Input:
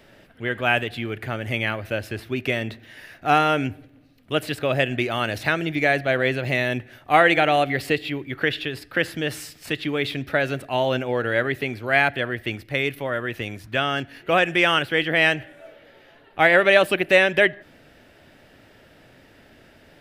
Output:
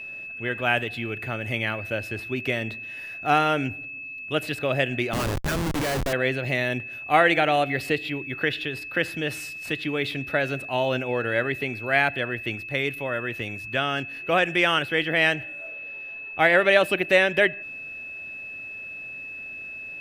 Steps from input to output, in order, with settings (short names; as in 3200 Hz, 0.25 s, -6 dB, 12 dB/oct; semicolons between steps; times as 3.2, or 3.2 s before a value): whine 2600 Hz -32 dBFS; 5.13–6.13 Schmitt trigger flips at -24 dBFS; gain -2.5 dB